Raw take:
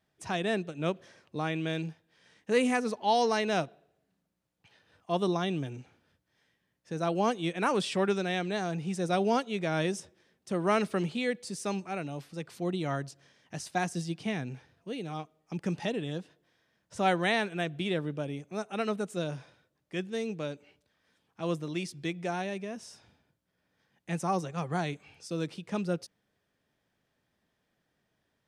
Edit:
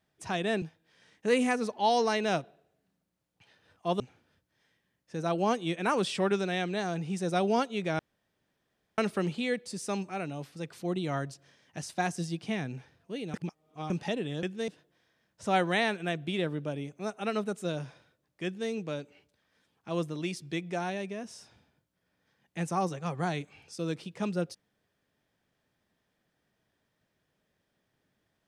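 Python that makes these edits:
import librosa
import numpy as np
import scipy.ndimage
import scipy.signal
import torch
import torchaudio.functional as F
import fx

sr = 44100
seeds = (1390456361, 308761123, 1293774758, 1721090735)

y = fx.edit(x, sr, fx.cut(start_s=0.62, length_s=1.24),
    fx.cut(start_s=5.24, length_s=0.53),
    fx.room_tone_fill(start_s=9.76, length_s=0.99),
    fx.reverse_span(start_s=15.11, length_s=0.56),
    fx.duplicate(start_s=19.97, length_s=0.25, to_s=16.2), tone=tone)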